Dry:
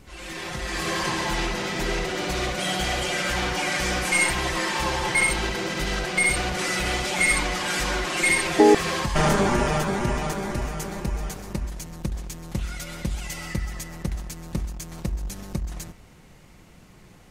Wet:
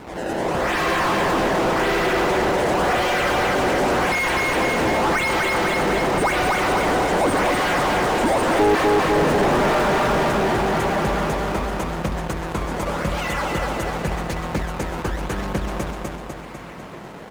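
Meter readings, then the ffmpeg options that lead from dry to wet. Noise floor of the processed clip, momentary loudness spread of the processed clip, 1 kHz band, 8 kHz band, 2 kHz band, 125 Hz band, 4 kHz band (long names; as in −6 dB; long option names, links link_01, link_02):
−36 dBFS, 9 LU, +8.5 dB, −4.0 dB, +2.5 dB, +2.5 dB, +0.5 dB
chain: -filter_complex "[0:a]acrossover=split=6200[link_01][link_02];[link_01]acrusher=samples=22:mix=1:aa=0.000001:lfo=1:lforange=35.2:lforate=0.89[link_03];[link_02]tremolo=f=10:d=0.83[link_04];[link_03][link_04]amix=inputs=2:normalize=0,aecho=1:1:249|498|747|996|1245|1494|1743:0.631|0.322|0.164|0.0837|0.0427|0.0218|0.0111,asplit=2[link_05][link_06];[link_06]highpass=frequency=720:poles=1,volume=33dB,asoftclip=type=tanh:threshold=-4dB[link_07];[link_05][link_07]amix=inputs=2:normalize=0,lowpass=frequency=1200:poles=1,volume=-6dB,volume=-5dB"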